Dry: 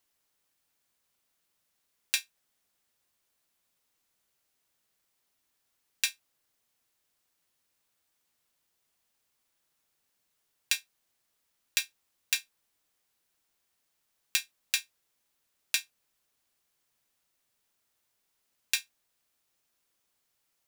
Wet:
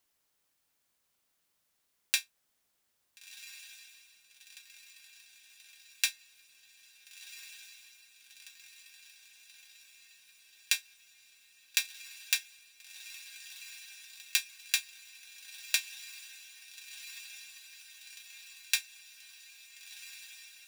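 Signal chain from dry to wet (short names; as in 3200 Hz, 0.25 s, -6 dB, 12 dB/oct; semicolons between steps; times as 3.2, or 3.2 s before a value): diffused feedback echo 1.398 s, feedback 69%, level -13 dB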